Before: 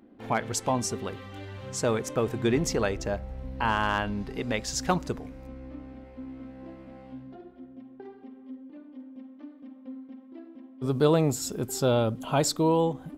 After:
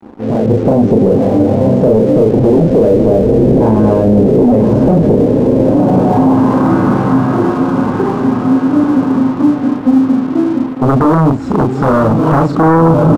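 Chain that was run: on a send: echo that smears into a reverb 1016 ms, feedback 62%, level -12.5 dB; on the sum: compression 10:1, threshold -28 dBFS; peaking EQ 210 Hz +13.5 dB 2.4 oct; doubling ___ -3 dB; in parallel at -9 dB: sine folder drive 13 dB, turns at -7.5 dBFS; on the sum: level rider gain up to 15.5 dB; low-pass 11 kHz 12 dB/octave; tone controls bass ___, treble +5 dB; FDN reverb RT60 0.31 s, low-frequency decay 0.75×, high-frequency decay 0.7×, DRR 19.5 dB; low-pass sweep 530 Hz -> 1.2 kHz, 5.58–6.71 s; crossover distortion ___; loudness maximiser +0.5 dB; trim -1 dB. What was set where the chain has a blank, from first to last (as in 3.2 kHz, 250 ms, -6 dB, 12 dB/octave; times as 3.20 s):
37 ms, 0 dB, -29.5 dBFS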